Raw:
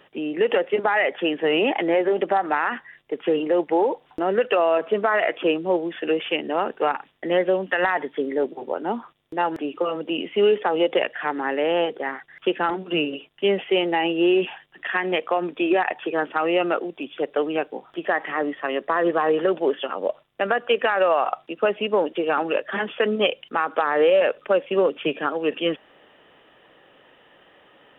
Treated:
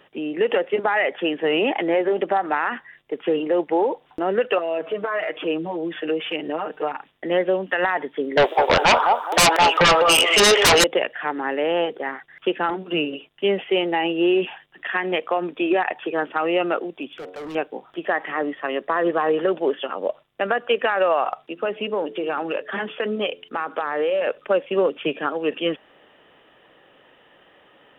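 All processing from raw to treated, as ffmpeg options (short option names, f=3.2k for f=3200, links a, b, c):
-filter_complex "[0:a]asettb=1/sr,asplit=3[a][b][c];[a]atrim=end=4.584[d];[b]atrim=start=4.58:end=6.96,asetpts=PTS-STARTPTS,afade=t=in:d=0.004:c=qsin,afade=t=out:st=2.376:d=0.004:c=qsin,acompressor=threshold=-29dB:ratio=2:attack=3.2:release=140:knee=1:detection=peak,aecho=1:1:6.5:0.9,atrim=end_sample=104958[e];[c]atrim=start=6.956[f];[d][e]acrossfade=d=0.004:c1=hsin:c2=qsin[g];[g][f]acrossfade=d=0.004:c1=qsin:c2=hsin,asettb=1/sr,asplit=3[h][i][j];[h]atrim=end=8.374[k];[i]atrim=start=8.37:end=10.84,asetpts=PTS-STARTPTS,afade=t=in:d=0.004:c=qsin,afade=t=out:st=2.466:d=0.004:c=qsin,highpass=f=660:w=0.5412,highpass=f=660:w=1.3066,asplit=2[l][m];[m]adelay=207,lowpass=f=1.9k:p=1,volume=-9.5dB,asplit=2[n][o];[o]adelay=207,lowpass=f=1.9k:p=1,volume=0.3,asplit=2[p][q];[q]adelay=207,lowpass=f=1.9k:p=1,volume=0.3[r];[l][n][p][r]amix=inputs=4:normalize=0,atrim=end_sample=108927,aeval=exprs='0.299*sin(PI/2*8.91*val(0)/0.299)':c=same[s];[j]atrim=start=10.836[t];[k][s]acrossfade=d=0.004:c1=hsin:c2=qsin[u];[u][t]acrossfade=d=0.004:c1=qsin:c2=hsin,asettb=1/sr,asplit=3[v][w][x];[v]atrim=end=17.074[y];[w]atrim=start=17.07:end=17.55,asetpts=PTS-STARTPTS,afade=t=in:d=0.004:c=qsin,afade=t=out:st=0.476:d=0.004:c=qsin,bandreject=f=91.85:t=h:w=4,bandreject=f=183.7:t=h:w=4,bandreject=f=275.55:t=h:w=4,bandreject=f=367.4:t=h:w=4,bandreject=f=459.25:t=h:w=4,bandreject=f=551.1:t=h:w=4,bandreject=f=642.95:t=h:w=4,bandreject=f=734.8:t=h:w=4,bandreject=f=826.65:t=h:w=4,bandreject=f=918.5:t=h:w=4,bandreject=f=1.01035k:t=h:w=4,bandreject=f=1.1022k:t=h:w=4,bandreject=f=1.19405k:t=h:w=4,bandreject=f=1.2859k:t=h:w=4,bandreject=f=1.37775k:t=h:w=4,bandreject=f=1.4696k:t=h:w=4,acompressor=threshold=-23dB:ratio=2.5:attack=3.2:release=140:knee=1:detection=peak,asoftclip=type=hard:threshold=-31.5dB[z];[x]atrim=start=17.546[aa];[y][z]acrossfade=d=0.004:c1=hsin:c2=qsin[ab];[ab][aa]acrossfade=d=0.004:c1=qsin:c2=hsin,asettb=1/sr,asplit=3[ac][ad][ae];[ac]atrim=end=21.304[af];[ad]atrim=start=21.3:end=24.27,asetpts=PTS-STARTPTS,afade=t=in:d=0.004:c=qsin,afade=t=out:st=2.966:d=0.004:c=qsin,bandreject=f=86.96:t=h:w=4,bandreject=f=173.92:t=h:w=4,bandreject=f=260.88:t=h:w=4,bandreject=f=347.84:t=h:w=4,bandreject=f=434.8:t=h:w=4,acompressor=threshold=-22dB:ratio=2:attack=3.2:release=140:knee=1:detection=peak[ag];[ae]atrim=start=24.266[ah];[af][ag]acrossfade=d=0.004:c1=hsin:c2=qsin[ai];[ai][ah]acrossfade=d=0.004:c1=qsin:c2=hsin"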